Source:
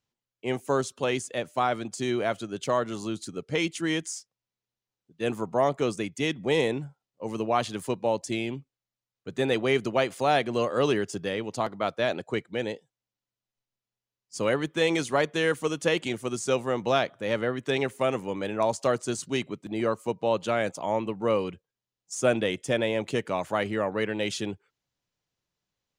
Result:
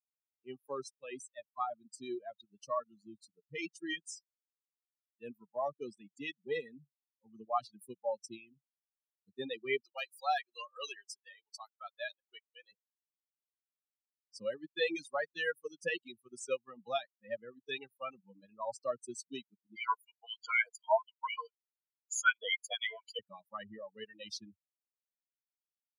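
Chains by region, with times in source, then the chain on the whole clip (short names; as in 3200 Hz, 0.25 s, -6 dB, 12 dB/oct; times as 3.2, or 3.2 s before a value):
9.8–12.72 HPF 540 Hz + high shelf 3400 Hz +4.5 dB + hard clip -14.5 dBFS
19.76–23.19 ripple EQ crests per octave 1.8, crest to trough 17 dB + LFO high-pass sine 4 Hz 660–2300 Hz
whole clip: per-bin expansion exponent 3; reverb removal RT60 1.4 s; weighting filter A; gain -1.5 dB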